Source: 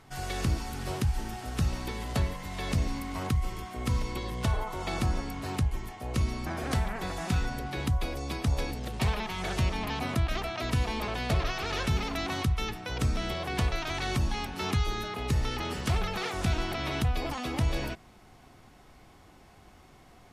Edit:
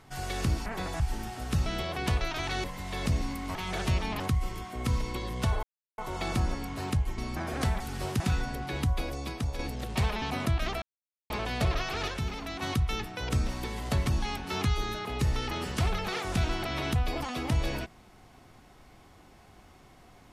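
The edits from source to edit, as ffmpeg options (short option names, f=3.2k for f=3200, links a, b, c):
-filter_complex "[0:a]asplit=19[a][b][c][d][e][f][g][h][i][j][k][l][m][n][o][p][q][r][s];[a]atrim=end=0.662[t];[b]atrim=start=6.898:end=7.242[u];[c]atrim=start=1.058:end=1.722[v];[d]atrim=start=13.168:end=14.152[w];[e]atrim=start=2.298:end=3.212[x];[f]atrim=start=9.258:end=9.912[y];[g]atrim=start=3.208:end=4.64,asetpts=PTS-STARTPTS,afade=t=out:st=1.428:d=0.004:c=hsin,apad=pad_dur=0.35[z];[h]atrim=start=4.64:end=5.842,asetpts=PTS-STARTPTS,afade=t=in:d=0.004:c=hsin[aa];[i]atrim=start=6.278:end=6.902[ab];[j]atrim=start=0.658:end=1.062[ac];[k]atrim=start=7.238:end=8.63,asetpts=PTS-STARTPTS,afade=t=out:st=0.892:d=0.5:silence=0.446684[ad];[l]atrim=start=8.63:end=9.262,asetpts=PTS-STARTPTS,afade=t=in:d=0.004:c=hsin:silence=0.446684[ae];[m]atrim=start=9.908:end=10.51,asetpts=PTS-STARTPTS,afade=t=out:st=0.598:d=0.004:c=hsin[af];[n]atrim=start=10.51:end=10.99,asetpts=PTS-STARTPTS,volume=0[ag];[o]atrim=start=10.99:end=11.772,asetpts=PTS-STARTPTS,afade=t=in:d=0.004:c=hsin[ah];[p]atrim=start=11.768:end=12.312,asetpts=PTS-STARTPTS,volume=-5dB[ai];[q]atrim=start=12.308:end=13.172[aj];[r]atrim=start=1.718:end=2.302[ak];[s]atrim=start=14.148[al];[t][u]acrossfade=d=0.004:c1=hsin:c2=hsin[am];[am][v]acrossfade=d=0.004:c1=hsin:c2=hsin[an];[an][w]acrossfade=d=0.004:c1=hsin:c2=hsin[ao];[ao][x]acrossfade=d=0.004:c1=hsin:c2=hsin[ap];[ap][y]acrossfade=d=0.004:c1=hsin:c2=hsin[aq];[z][aa]concat=n=2:v=0:a=1[ar];[aq][ar]acrossfade=d=0.004:c1=hsin:c2=hsin[as];[as][ab]acrossfade=d=0.004:c1=hsin:c2=hsin[at];[at][ac]acrossfade=d=0.004:c1=hsin:c2=hsin[au];[ad][ae]concat=n=2:v=0:a=1[av];[au][av]acrossfade=d=0.004:c1=hsin:c2=hsin[aw];[af][ag][ah]concat=n=3:v=0:a=1[ax];[aw][ax]acrossfade=d=0.004:c1=hsin:c2=hsin[ay];[ay][ai]acrossfade=d=0.004:c1=hsin:c2=hsin[az];[az][aj]acrossfade=d=0.004:c1=hsin:c2=hsin[ba];[ba][ak]acrossfade=d=0.004:c1=hsin:c2=hsin[bb];[bb][al]acrossfade=d=0.004:c1=hsin:c2=hsin"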